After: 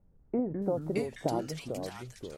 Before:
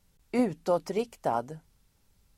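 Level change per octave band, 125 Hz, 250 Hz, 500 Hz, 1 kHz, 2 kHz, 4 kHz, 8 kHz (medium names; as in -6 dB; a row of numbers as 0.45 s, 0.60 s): +4.5 dB, -1.5 dB, -3.0 dB, -7.0 dB, -2.0 dB, +1.5 dB, +2.0 dB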